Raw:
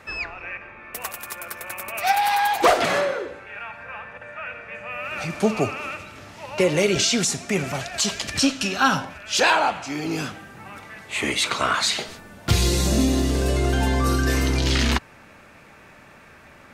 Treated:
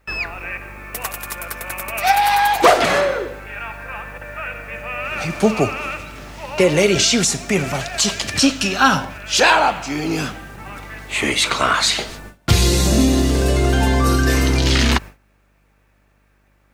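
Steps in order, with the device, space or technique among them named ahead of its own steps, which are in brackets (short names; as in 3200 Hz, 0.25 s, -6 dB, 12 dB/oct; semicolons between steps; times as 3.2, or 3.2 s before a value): video cassette with head-switching buzz (buzz 50 Hz, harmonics 21, -44 dBFS -7 dB/oct; white noise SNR 37 dB); gate with hold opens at -31 dBFS; gain +5 dB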